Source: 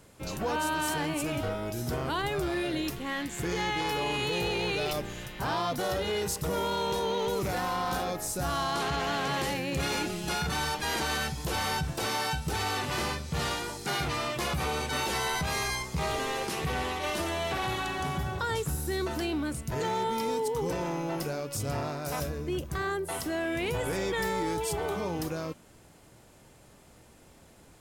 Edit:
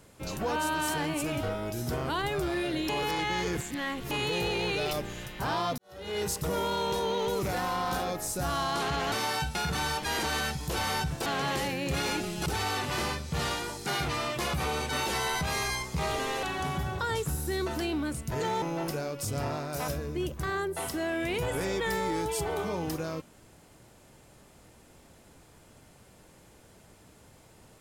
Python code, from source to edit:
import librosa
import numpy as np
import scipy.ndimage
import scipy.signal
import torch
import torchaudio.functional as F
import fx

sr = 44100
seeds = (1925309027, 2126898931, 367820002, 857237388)

y = fx.edit(x, sr, fx.reverse_span(start_s=2.89, length_s=1.22),
    fx.fade_in_span(start_s=5.78, length_s=0.43, curve='qua'),
    fx.swap(start_s=9.12, length_s=1.2, other_s=12.03, other_length_s=0.43),
    fx.cut(start_s=16.43, length_s=1.4),
    fx.cut(start_s=20.02, length_s=0.92), tone=tone)